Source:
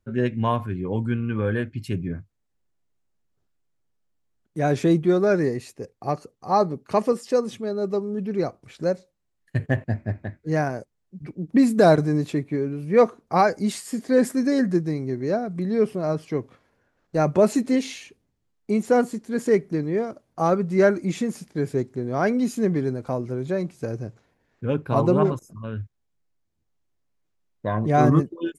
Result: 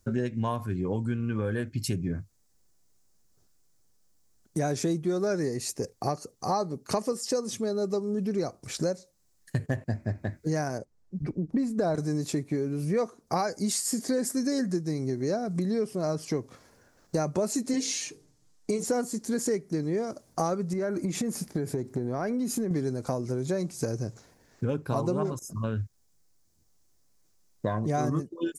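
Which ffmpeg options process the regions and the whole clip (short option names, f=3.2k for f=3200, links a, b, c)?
-filter_complex "[0:a]asettb=1/sr,asplit=3[a][b][c];[a]atrim=end=10.784[d];[b]atrim=start=10.78:end=11.95,asetpts=PTS-STARTPTS,afade=t=in:d=0.004:c=qsin,afade=t=out:st=1.166:d=0.004:c=qsin,lowpass=f=1.3k:p=1,asubboost=boost=8:cutoff=93[e];[c]atrim=start=11.946[f];[d][e]acrossfade=d=0.004:c1=hsin:c2=qsin[g];[g][f]acrossfade=d=0.004:c1=qsin:c2=hsin,asettb=1/sr,asplit=3[h][i][j];[h]atrim=end=17.734[k];[i]atrim=start=17.73:end=18.84,asetpts=PTS-STARTPTS,afade=t=in:d=0.004:c=qsin,afade=t=out:st=1.106:d=0.004:c=qsin,lowpass=9.8k,bandreject=f=50:t=h:w=6,bandreject=f=100:t=h:w=6,bandreject=f=150:t=h:w=6,bandreject=f=200:t=h:w=6,bandreject=f=250:t=h:w=6,bandreject=f=300:t=h:w=6,bandreject=f=350:t=h:w=6,bandreject=f=400:t=h:w=6,bandreject=f=450:t=h:w=6,bandreject=f=500:t=h:w=6,aecho=1:1:6.6:0.68,atrim=end_sample=48951[l];[j]atrim=start=18.836[m];[k][l]acrossfade=d=0.004:c1=hsin:c2=qsin[n];[n][m]acrossfade=d=0.004:c1=qsin:c2=hsin,asettb=1/sr,asplit=3[o][p][q];[o]atrim=end=20.734[r];[p]atrim=start=20.73:end=22.71,asetpts=PTS-STARTPTS,afade=t=in:d=0.004:c=qsin,afade=t=out:st=1.976:d=0.004:c=qsin,equalizer=f=6.3k:t=o:w=1.7:g=-10,acompressor=threshold=-26dB:ratio=6:attack=3.2:release=140:knee=1:detection=peak[s];[q]atrim=start=22.706[t];[r][s]acrossfade=d=0.004:c1=hsin:c2=qsin[u];[u][t]acrossfade=d=0.004:c1=qsin:c2=hsin,highshelf=f=4.1k:t=q:w=1.5:g=9.5,acompressor=threshold=-34dB:ratio=5,volume=7dB"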